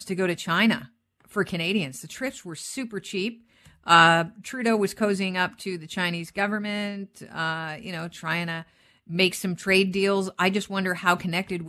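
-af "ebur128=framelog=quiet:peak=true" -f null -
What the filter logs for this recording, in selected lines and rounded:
Integrated loudness:
  I:         -24.8 LUFS
  Threshold: -35.2 LUFS
Loudness range:
  LRA:         6.5 LU
  Threshold: -45.3 LUFS
  LRA low:   -29.3 LUFS
  LRA high:  -22.8 LUFS
True peak:
  Peak:       -3.7 dBFS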